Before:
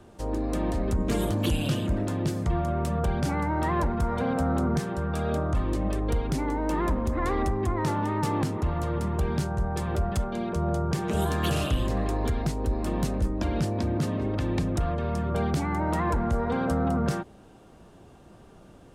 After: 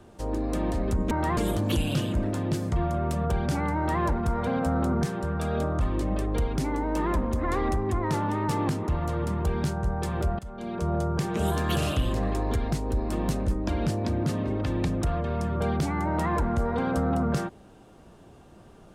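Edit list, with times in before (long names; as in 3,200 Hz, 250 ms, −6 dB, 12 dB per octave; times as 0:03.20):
0:03.50–0:03.76: duplicate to 0:01.11
0:10.13–0:10.59: fade in, from −20 dB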